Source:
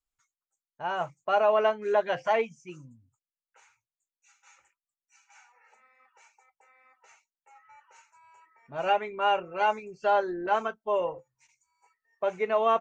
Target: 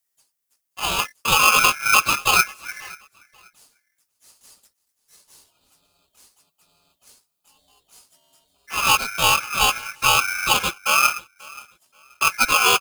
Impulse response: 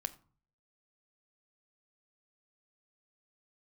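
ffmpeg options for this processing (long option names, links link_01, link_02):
-filter_complex "[0:a]afwtdn=0.0126,equalizer=frequency=500:width_type=o:width=0.33:gain=10,equalizer=frequency=2000:width_type=o:width=0.33:gain=8,equalizer=frequency=4000:width_type=o:width=0.33:gain=-11,asplit=2[link_01][link_02];[link_02]acompressor=threshold=-38dB:ratio=6,volume=-1dB[link_03];[link_01][link_03]amix=inputs=2:normalize=0,aexciter=amount=15.8:drive=6.3:freq=5800,asplit=2[link_04][link_05];[link_05]aecho=0:1:535|1070:0.0708|0.0177[link_06];[link_04][link_06]amix=inputs=2:normalize=0,asplit=3[link_07][link_08][link_09];[link_08]asetrate=55563,aresample=44100,atempo=0.793701,volume=0dB[link_10];[link_09]asetrate=58866,aresample=44100,atempo=0.749154,volume=-2dB[link_11];[link_07][link_10][link_11]amix=inputs=3:normalize=0,aeval=exprs='val(0)*sgn(sin(2*PI*1900*n/s))':channel_layout=same"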